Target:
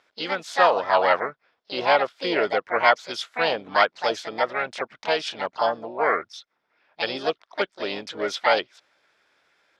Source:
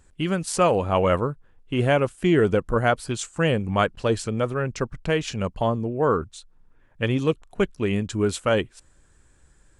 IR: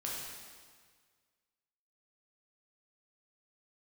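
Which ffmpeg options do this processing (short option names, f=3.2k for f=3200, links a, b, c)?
-filter_complex "[0:a]highpass=460,equalizer=f=650:t=q:w=4:g=7,equalizer=f=1.4k:t=q:w=4:g=7,equalizer=f=3.5k:t=q:w=4:g=10,lowpass=f=4.6k:w=0.5412,lowpass=f=4.6k:w=1.3066,asplit=3[a][b][c];[b]asetrate=58866,aresample=44100,atempo=0.749154,volume=-7dB[d];[c]asetrate=66075,aresample=44100,atempo=0.66742,volume=-4dB[e];[a][d][e]amix=inputs=3:normalize=0,volume=-2.5dB"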